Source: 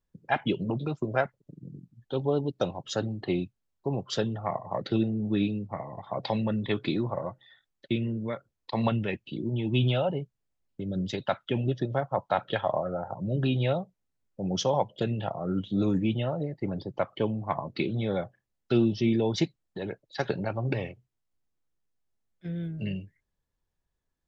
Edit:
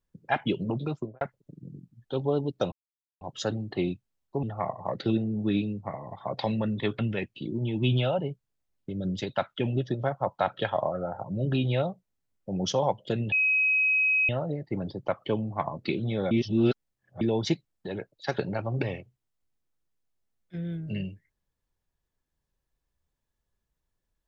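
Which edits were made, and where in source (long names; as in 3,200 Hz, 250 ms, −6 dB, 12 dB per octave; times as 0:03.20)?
0:00.93–0:01.21: fade out and dull
0:02.72: splice in silence 0.49 s
0:03.94–0:04.29: remove
0:06.85–0:08.90: remove
0:15.23–0:16.20: beep over 2,540 Hz −20.5 dBFS
0:18.22–0:19.12: reverse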